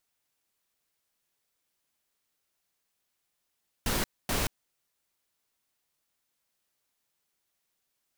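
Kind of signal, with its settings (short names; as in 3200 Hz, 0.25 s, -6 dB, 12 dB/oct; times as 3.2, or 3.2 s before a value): noise bursts pink, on 0.18 s, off 0.25 s, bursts 2, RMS -28.5 dBFS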